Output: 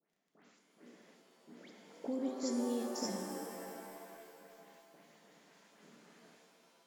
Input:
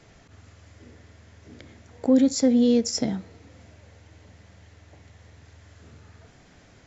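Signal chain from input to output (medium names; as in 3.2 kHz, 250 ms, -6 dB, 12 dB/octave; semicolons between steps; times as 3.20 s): gate with hold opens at -41 dBFS; elliptic high-pass 170 Hz; compression 2:1, threshold -35 dBFS, peak gain reduction 11 dB; phase dispersion highs, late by 113 ms, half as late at 2.6 kHz; crackle 11 per s -53 dBFS; pitch-shifted reverb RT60 2.4 s, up +7 st, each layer -2 dB, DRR 4.5 dB; trim -8 dB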